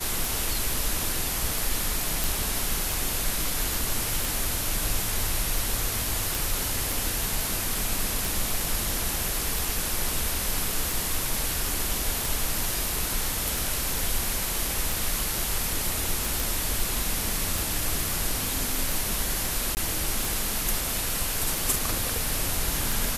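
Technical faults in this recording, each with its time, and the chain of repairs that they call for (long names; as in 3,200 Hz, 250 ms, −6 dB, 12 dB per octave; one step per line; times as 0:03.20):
scratch tick 45 rpm
0:02.24: click
0:06.35: click
0:16.40: click
0:19.75–0:19.77: drop-out 19 ms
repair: click removal
repair the gap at 0:19.75, 19 ms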